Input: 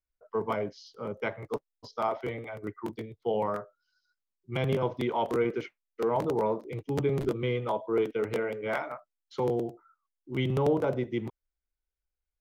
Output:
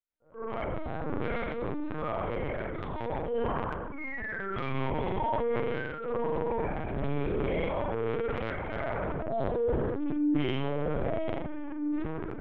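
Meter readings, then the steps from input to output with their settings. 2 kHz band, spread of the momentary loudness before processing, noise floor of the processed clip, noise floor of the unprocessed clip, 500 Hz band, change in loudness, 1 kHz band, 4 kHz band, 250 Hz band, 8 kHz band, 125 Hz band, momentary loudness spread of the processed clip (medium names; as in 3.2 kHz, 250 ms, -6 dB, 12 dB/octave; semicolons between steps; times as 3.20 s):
+2.5 dB, 11 LU, -38 dBFS, under -85 dBFS, -1.5 dB, -1.0 dB, 0.0 dB, -1.5 dB, +1.5 dB, no reading, -1.0 dB, 7 LU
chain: recorder AGC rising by 6.3 dB/s; bass shelf 190 Hz -8 dB; painted sound fall, 3.92–4.85 s, 900–2300 Hz -38 dBFS; ever faster or slower copies 145 ms, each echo -6 st, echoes 3, each echo -6 dB; inharmonic resonator 69 Hz, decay 0.29 s, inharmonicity 0.008; spring tank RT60 1.2 s, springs 44 ms, chirp 35 ms, DRR -9 dB; LPC vocoder at 8 kHz pitch kept; distance through air 92 m; peak limiter -20.5 dBFS, peak gain reduction 8 dB; transient shaper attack -6 dB, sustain +9 dB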